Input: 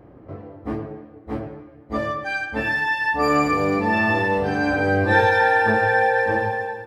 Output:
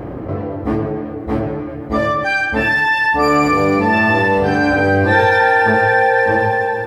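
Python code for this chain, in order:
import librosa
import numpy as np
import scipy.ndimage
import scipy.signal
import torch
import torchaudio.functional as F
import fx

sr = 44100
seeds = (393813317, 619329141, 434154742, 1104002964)

y = fx.env_flatten(x, sr, amount_pct=50)
y = F.gain(torch.from_numpy(y), 3.0).numpy()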